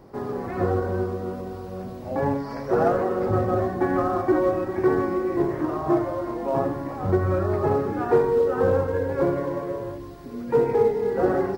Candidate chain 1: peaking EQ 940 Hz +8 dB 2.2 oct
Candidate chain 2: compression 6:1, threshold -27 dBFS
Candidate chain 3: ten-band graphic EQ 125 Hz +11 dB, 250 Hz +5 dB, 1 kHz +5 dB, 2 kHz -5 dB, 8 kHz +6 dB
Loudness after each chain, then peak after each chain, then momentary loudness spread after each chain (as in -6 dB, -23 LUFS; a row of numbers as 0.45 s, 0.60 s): -19.5 LUFS, -31.5 LUFS, -20.0 LUFS; -3.5 dBFS, -18.0 dBFS, -4.0 dBFS; 11 LU, 4 LU, 10 LU